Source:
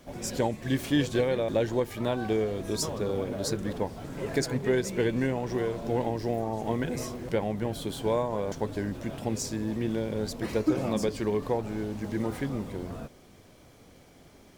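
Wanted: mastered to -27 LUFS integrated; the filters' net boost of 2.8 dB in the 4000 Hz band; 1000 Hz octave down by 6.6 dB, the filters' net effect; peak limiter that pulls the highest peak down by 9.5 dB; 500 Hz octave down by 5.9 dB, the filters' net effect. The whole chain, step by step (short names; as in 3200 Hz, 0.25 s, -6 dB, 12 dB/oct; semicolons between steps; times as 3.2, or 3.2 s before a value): bell 500 Hz -6 dB; bell 1000 Hz -6.5 dB; bell 4000 Hz +4 dB; gain +8 dB; limiter -16 dBFS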